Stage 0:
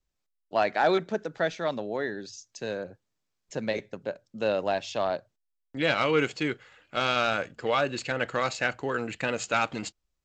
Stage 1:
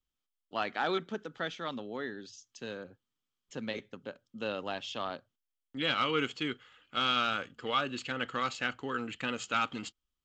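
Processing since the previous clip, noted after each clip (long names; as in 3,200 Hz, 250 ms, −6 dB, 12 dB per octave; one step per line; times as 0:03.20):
thirty-one-band graphic EQ 250 Hz +7 dB, 630 Hz −7 dB, 1,250 Hz +8 dB, 3,150 Hz +12 dB
level −8 dB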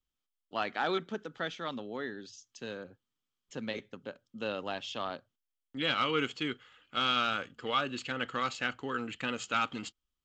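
no processing that can be heard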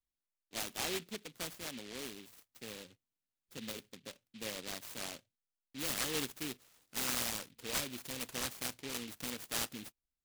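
short delay modulated by noise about 2,900 Hz, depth 0.28 ms
level −6.5 dB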